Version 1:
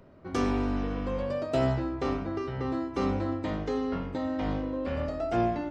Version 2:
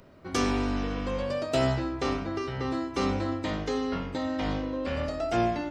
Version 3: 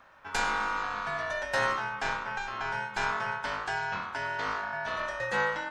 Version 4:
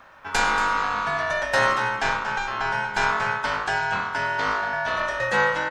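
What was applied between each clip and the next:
treble shelf 2.2 kHz +11 dB
ring modulator 1.2 kHz
delay 232 ms -11 dB; trim +7.5 dB

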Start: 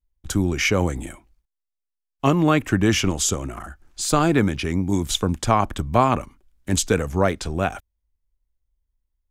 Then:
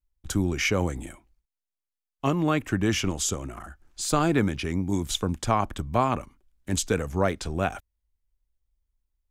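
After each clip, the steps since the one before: gain riding within 3 dB 2 s; trim -5 dB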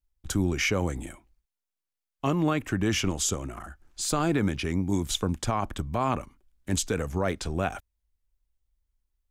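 peak limiter -15 dBFS, peak gain reduction 7 dB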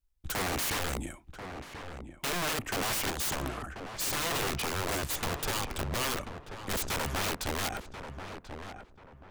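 integer overflow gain 26.5 dB; filtered feedback delay 1037 ms, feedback 32%, low-pass 1.8 kHz, level -8 dB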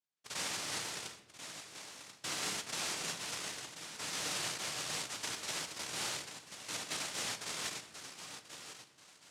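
noise-vocoded speech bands 1; reverberation RT60 1.0 s, pre-delay 7 ms, DRR 9.5 dB; trim -6.5 dB

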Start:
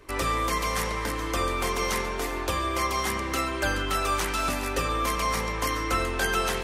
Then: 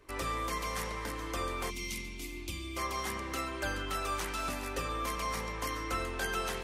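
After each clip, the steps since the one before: time-frequency box 1.70–2.77 s, 370–2000 Hz -19 dB; trim -8.5 dB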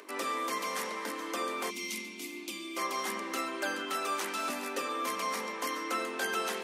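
steep high-pass 200 Hz 72 dB/octave; upward compressor, threshold -47 dBFS; trim +2 dB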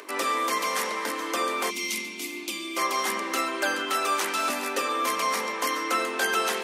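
bass shelf 180 Hz -11 dB; trim +8 dB

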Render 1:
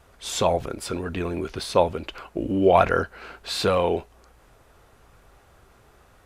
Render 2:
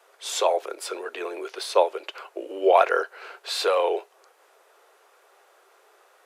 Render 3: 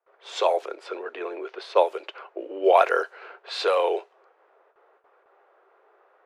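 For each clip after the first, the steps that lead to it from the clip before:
steep high-pass 380 Hz 48 dB/octave
level-controlled noise filter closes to 2 kHz, open at -17 dBFS; gate with hold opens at -50 dBFS; tape noise reduction on one side only decoder only

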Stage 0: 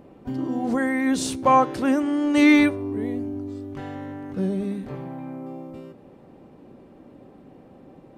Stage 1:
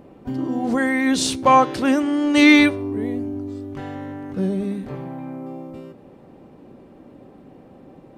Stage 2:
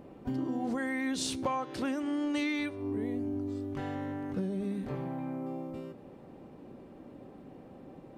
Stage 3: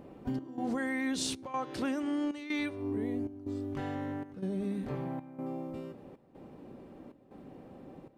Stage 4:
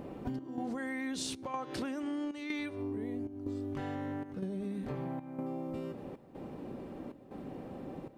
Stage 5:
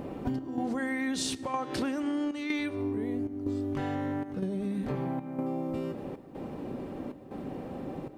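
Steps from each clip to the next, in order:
dynamic bell 3.8 kHz, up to +7 dB, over -41 dBFS, Q 0.77; trim +2.5 dB
compression 10:1, threshold -25 dBFS, peak gain reduction 17.5 dB; trim -4.5 dB
trance gate "xx.xxxx.xx" 78 bpm -12 dB
compression, threshold -41 dBFS, peak gain reduction 11.5 dB; trim +6 dB
reverberation RT60 2.8 s, pre-delay 4 ms, DRR 16.5 dB; trim +5.5 dB

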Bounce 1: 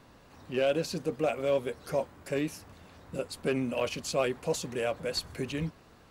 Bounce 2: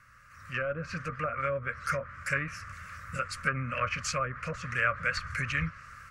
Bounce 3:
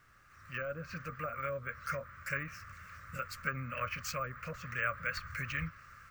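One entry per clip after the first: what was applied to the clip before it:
low-pass that closes with the level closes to 710 Hz, closed at -23.5 dBFS; FFT filter 120 Hz 0 dB, 370 Hz -26 dB, 560 Hz -11 dB, 860 Hz -27 dB, 1.2 kHz +12 dB, 2.2 kHz +7 dB, 3.6 kHz -11 dB, 5.6 kHz +2 dB; level rider gain up to 10 dB; trim -3 dB
added noise pink -66 dBFS; careless resampling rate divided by 2×, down filtered, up hold; trim -6.5 dB

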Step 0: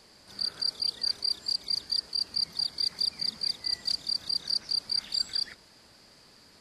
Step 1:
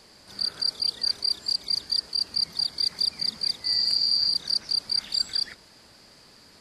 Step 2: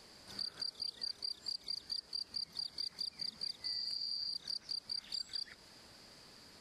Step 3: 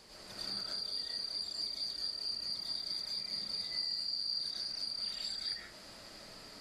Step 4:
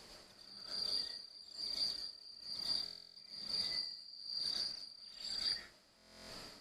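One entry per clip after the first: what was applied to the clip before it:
spectral replace 3.69–4.30 s, 3.1–6.9 kHz after; trim +3.5 dB
compression 5:1, threshold -34 dBFS, peak gain reduction 13 dB; trim -5 dB
peak limiter -34.5 dBFS, peak gain reduction 5 dB; algorithmic reverb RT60 0.58 s, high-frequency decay 0.45×, pre-delay 65 ms, DRR -6 dB
buffer glitch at 2.84/5.97 s, samples 1024, times 13; logarithmic tremolo 1.1 Hz, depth 18 dB; trim +1.5 dB

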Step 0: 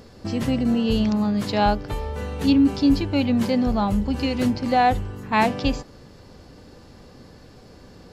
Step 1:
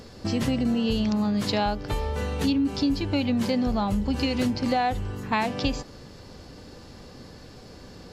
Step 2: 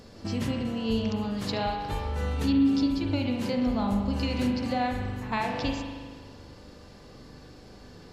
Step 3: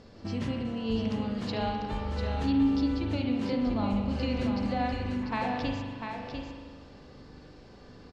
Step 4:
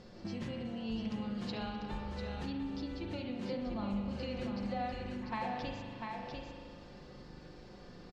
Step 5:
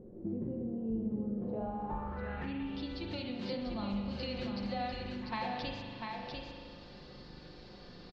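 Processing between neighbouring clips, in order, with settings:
peaking EQ 5 kHz +3.5 dB 2.1 oct; compression 6:1, threshold -22 dBFS, peak gain reduction 9.5 dB; trim +1 dB
pre-echo 105 ms -20 dB; spring tank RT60 1.6 s, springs 40 ms, chirp 25 ms, DRR 1.5 dB; trim -5.5 dB
distance through air 93 m; delay 696 ms -6 dB; trim -2.5 dB
compression 1.5:1, threshold -44 dBFS, peak gain reduction 8.5 dB; comb 5.6 ms, depth 49%; trim -2 dB
low-pass sweep 390 Hz -> 4.3 kHz, 1.31–2.97 s

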